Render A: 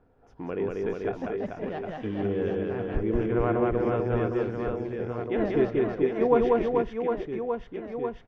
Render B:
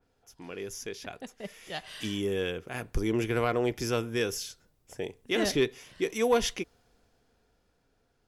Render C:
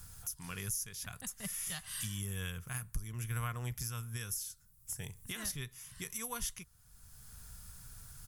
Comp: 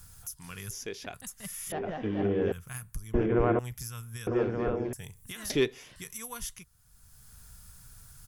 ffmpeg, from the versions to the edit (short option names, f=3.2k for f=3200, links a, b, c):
-filter_complex "[1:a]asplit=2[a][b];[0:a]asplit=3[c][d][e];[2:a]asplit=6[f][g][h][i][j][k];[f]atrim=end=0.712[l];[a]atrim=start=0.708:end=1.142[m];[g]atrim=start=1.138:end=1.722[n];[c]atrim=start=1.718:end=2.522[o];[h]atrim=start=2.518:end=3.142[p];[d]atrim=start=3.138:end=3.592[q];[i]atrim=start=3.588:end=4.272[r];[e]atrim=start=4.268:end=4.932[s];[j]atrim=start=4.928:end=5.502[t];[b]atrim=start=5.498:end=5.962[u];[k]atrim=start=5.958[v];[l][m]acrossfade=d=0.004:c1=hsin:c2=hsin[w];[w][n]acrossfade=d=0.004:c1=hsin:c2=hsin[x];[x][o]acrossfade=d=0.004:c1=hsin:c2=hsin[y];[y][p]acrossfade=d=0.004:c1=hsin:c2=hsin[z];[z][q]acrossfade=d=0.004:c1=hsin:c2=hsin[aa];[aa][r]acrossfade=d=0.004:c1=hsin:c2=hsin[ab];[ab][s]acrossfade=d=0.004:c1=hsin:c2=hsin[ac];[ac][t]acrossfade=d=0.004:c1=hsin:c2=hsin[ad];[ad][u]acrossfade=d=0.004:c1=hsin:c2=hsin[ae];[ae][v]acrossfade=d=0.004:c1=hsin:c2=hsin"